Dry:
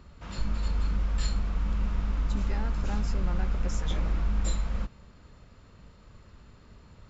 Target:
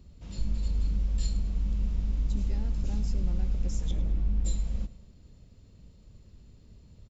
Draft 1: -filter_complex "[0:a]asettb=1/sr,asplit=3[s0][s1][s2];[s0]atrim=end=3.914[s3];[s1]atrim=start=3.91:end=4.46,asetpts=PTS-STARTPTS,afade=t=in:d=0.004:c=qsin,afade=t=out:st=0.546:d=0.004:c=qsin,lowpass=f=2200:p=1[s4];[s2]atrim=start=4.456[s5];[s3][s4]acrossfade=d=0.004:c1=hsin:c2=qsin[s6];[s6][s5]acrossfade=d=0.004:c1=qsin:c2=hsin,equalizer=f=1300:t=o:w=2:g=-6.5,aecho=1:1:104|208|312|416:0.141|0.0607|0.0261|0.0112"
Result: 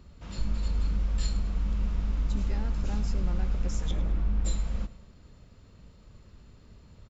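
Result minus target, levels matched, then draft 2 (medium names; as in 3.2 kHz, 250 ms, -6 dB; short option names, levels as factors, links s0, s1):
1 kHz band +8.5 dB
-filter_complex "[0:a]asettb=1/sr,asplit=3[s0][s1][s2];[s0]atrim=end=3.914[s3];[s1]atrim=start=3.91:end=4.46,asetpts=PTS-STARTPTS,afade=t=in:d=0.004:c=qsin,afade=t=out:st=0.546:d=0.004:c=qsin,lowpass=f=2200:p=1[s4];[s2]atrim=start=4.456[s5];[s3][s4]acrossfade=d=0.004:c1=hsin:c2=qsin[s6];[s6][s5]acrossfade=d=0.004:c1=qsin:c2=hsin,equalizer=f=1300:t=o:w=2:g=-18.5,aecho=1:1:104|208|312|416:0.141|0.0607|0.0261|0.0112"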